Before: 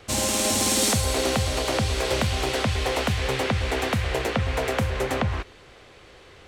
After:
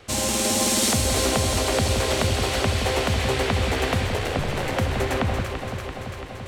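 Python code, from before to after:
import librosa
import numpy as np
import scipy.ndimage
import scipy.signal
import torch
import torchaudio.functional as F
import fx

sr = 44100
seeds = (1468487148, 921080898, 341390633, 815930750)

y = fx.ring_mod(x, sr, carrier_hz=fx.line((4.06, 23.0), (4.75, 130.0)), at=(4.06, 4.75), fade=0.02)
y = fx.echo_alternate(y, sr, ms=169, hz=1000.0, feedback_pct=85, wet_db=-5.5)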